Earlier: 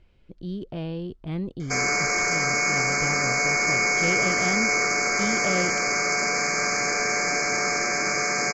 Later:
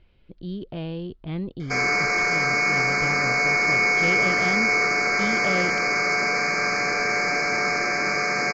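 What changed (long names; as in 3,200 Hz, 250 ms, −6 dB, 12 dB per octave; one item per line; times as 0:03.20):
background: send +7.0 dB
master: add high shelf with overshoot 5,500 Hz −11 dB, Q 1.5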